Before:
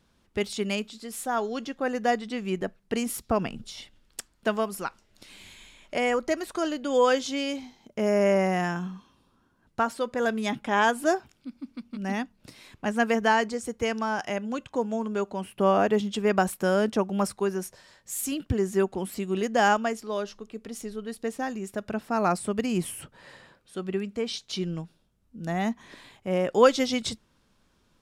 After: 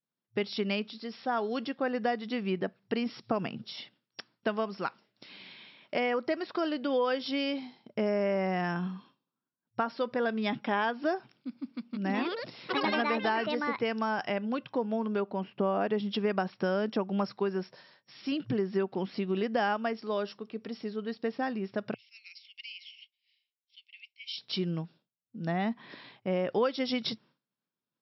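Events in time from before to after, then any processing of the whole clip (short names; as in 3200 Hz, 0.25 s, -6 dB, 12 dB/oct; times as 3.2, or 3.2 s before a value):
11.83–14.25 echoes that change speed 0.148 s, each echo +5 st, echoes 3
15.2–15.81 high shelf 2300 Hz -8 dB
21.94–24.38 rippled Chebyshev high-pass 2100 Hz, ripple 6 dB
whole clip: expander -50 dBFS; FFT band-pass 110–5600 Hz; compressor 4:1, threshold -26 dBFS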